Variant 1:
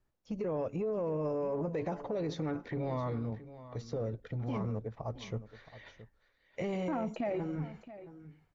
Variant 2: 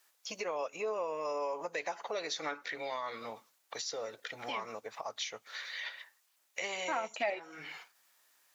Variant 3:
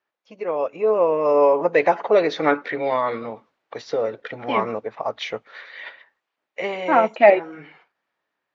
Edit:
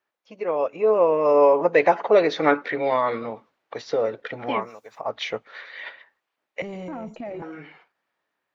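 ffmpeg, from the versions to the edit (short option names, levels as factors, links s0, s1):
-filter_complex "[2:a]asplit=3[s0][s1][s2];[s0]atrim=end=4.71[s3];[1:a]atrim=start=4.47:end=5.14[s4];[s1]atrim=start=4.9:end=6.622[s5];[0:a]atrim=start=6.618:end=7.422[s6];[s2]atrim=start=7.418[s7];[s3][s4]acrossfade=d=0.24:c1=tri:c2=tri[s8];[s8][s5]acrossfade=d=0.24:c1=tri:c2=tri[s9];[s9][s6]acrossfade=d=0.004:c1=hsin:c2=hsin[s10];[s10][s7]acrossfade=d=0.004:c1=hsin:c2=hsin"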